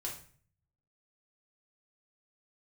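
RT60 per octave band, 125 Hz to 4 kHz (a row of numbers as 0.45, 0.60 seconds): 1.0, 0.65, 0.45, 0.45, 0.45, 0.40 seconds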